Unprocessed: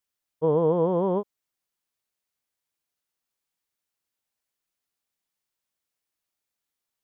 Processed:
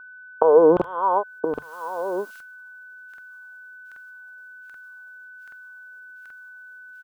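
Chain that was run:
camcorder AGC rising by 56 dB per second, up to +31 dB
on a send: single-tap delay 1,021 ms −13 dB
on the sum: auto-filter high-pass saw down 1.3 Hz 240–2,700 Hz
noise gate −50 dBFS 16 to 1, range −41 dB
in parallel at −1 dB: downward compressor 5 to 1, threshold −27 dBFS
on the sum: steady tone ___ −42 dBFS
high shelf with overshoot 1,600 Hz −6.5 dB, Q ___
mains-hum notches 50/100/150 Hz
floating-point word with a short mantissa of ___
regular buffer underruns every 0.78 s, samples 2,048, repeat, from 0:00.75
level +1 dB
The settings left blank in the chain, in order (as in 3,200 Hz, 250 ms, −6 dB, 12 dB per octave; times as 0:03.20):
1,500 Hz, 3, 8 bits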